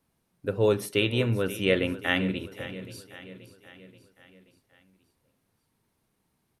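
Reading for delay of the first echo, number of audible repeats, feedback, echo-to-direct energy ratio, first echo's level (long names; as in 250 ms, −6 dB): 530 ms, 4, 54%, −13.5 dB, −15.0 dB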